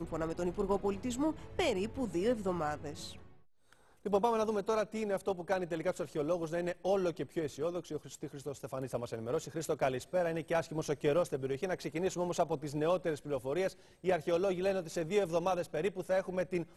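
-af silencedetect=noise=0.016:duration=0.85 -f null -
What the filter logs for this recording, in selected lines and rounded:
silence_start: 3.07
silence_end: 4.06 | silence_duration: 0.99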